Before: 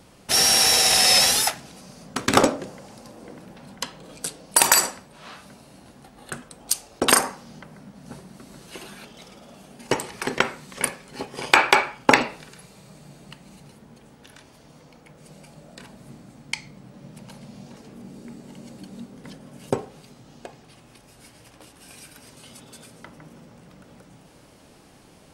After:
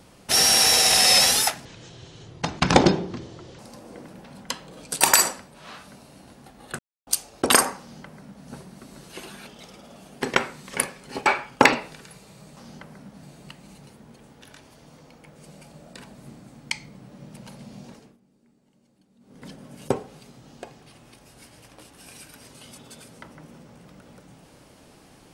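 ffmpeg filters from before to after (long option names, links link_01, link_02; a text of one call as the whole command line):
ffmpeg -i in.wav -filter_complex "[0:a]asplit=12[link_01][link_02][link_03][link_04][link_05][link_06][link_07][link_08][link_09][link_10][link_11][link_12];[link_01]atrim=end=1.654[link_13];[link_02]atrim=start=1.65:end=2.91,asetpts=PTS-STARTPTS,asetrate=28665,aresample=44100,atrim=end_sample=85486,asetpts=PTS-STARTPTS[link_14];[link_03]atrim=start=2.906:end=4.332[link_15];[link_04]atrim=start=4.588:end=6.37,asetpts=PTS-STARTPTS,afade=type=out:start_time=1.778:duration=0.004:curve=hsin[link_16];[link_05]atrim=start=6.37:end=6.65,asetpts=PTS-STARTPTS,volume=0[link_17];[link_06]atrim=start=6.65:end=9.802,asetpts=PTS-STARTPTS,afade=type=in:duration=0.004:curve=hsin[link_18];[link_07]atrim=start=10.258:end=11.302[link_19];[link_08]atrim=start=11.738:end=13.052[link_20];[link_09]atrim=start=7.378:end=8.042[link_21];[link_10]atrim=start=13.048:end=18,asetpts=PTS-STARTPTS,afade=type=out:start_time=4.662:duration=0.29:silence=0.0794328[link_22];[link_11]atrim=start=18:end=19.02,asetpts=PTS-STARTPTS,volume=-22dB[link_23];[link_12]atrim=start=19.02,asetpts=PTS-STARTPTS,afade=type=in:duration=0.29:silence=0.0794328[link_24];[link_13][link_14]acrossfade=duration=0.004:curve1=hsin:curve2=hsin[link_25];[link_25][link_15]acrossfade=duration=0.004:curve1=hsin:curve2=hsin[link_26];[link_16][link_17][link_18]concat=n=3:v=0:a=1[link_27];[link_26][link_27]acrossfade=duration=0.004:curve1=hsin:curve2=hsin[link_28];[link_28][link_19]acrossfade=duration=0.004:curve1=hsin:curve2=hsin[link_29];[link_29][link_20]acrossfade=duration=0.004:curve1=hsin:curve2=hsin[link_30];[link_30][link_21]acrossfade=duration=0.004:curve1=hsin:curve2=hsin[link_31];[link_22][link_23][link_24]concat=n=3:v=0:a=1[link_32];[link_31][link_32]acrossfade=duration=0.004:curve1=hsin:curve2=hsin" out.wav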